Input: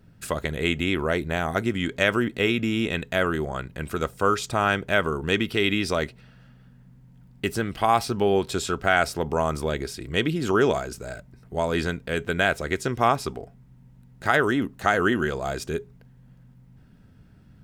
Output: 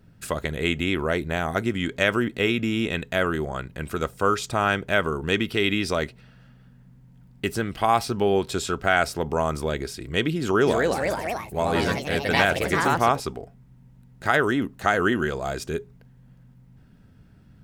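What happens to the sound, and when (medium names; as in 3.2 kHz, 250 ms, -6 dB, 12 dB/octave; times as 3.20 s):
10.40–13.42 s: ever faster or slower copies 261 ms, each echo +3 st, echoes 3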